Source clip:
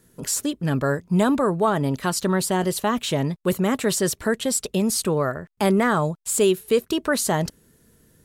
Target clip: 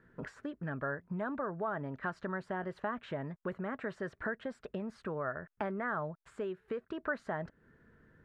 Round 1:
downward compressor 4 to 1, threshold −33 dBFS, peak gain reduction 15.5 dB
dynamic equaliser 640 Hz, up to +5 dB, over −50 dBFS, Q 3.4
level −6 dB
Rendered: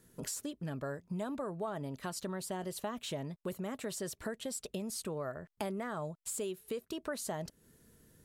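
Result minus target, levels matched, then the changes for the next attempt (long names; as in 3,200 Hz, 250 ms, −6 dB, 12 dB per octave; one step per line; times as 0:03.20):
2,000 Hz band −7.5 dB
add after downward compressor: low-pass with resonance 1,600 Hz, resonance Q 3.2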